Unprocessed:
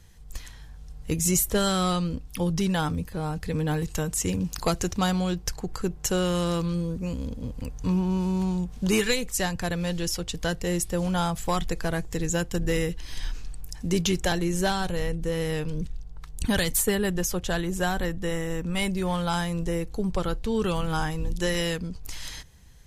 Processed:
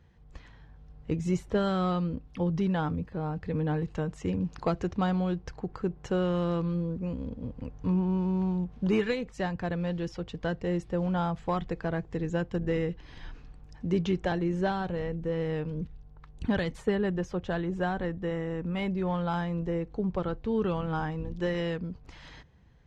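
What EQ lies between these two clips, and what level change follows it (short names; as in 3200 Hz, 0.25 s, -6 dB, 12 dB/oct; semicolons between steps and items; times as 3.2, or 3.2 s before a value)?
HPF 120 Hz 6 dB/oct; tape spacing loss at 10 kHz 37 dB; 0.0 dB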